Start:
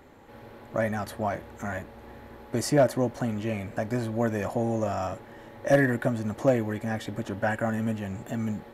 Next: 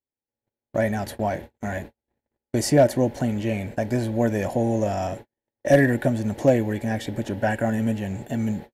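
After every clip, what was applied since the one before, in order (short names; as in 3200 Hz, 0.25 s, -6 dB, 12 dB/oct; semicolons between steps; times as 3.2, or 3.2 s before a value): bell 1200 Hz -14.5 dB 0.4 oct; gate -40 dBFS, range -50 dB; gain +5 dB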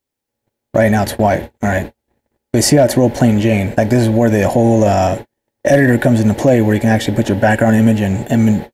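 maximiser +14.5 dB; gain -1 dB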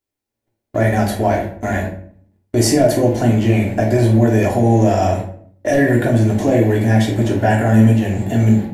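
reverb RT60 0.55 s, pre-delay 3 ms, DRR -2 dB; gain -7.5 dB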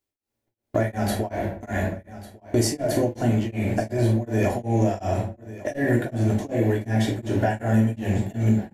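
compressor 2.5:1, threshold -19 dBFS, peak gain reduction 9 dB; echo 1.149 s -17 dB; beating tremolo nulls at 2.7 Hz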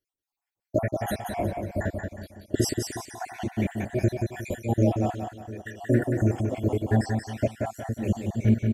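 random spectral dropouts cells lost 69%; on a send: feedback echo 0.18 s, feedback 35%, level -5 dB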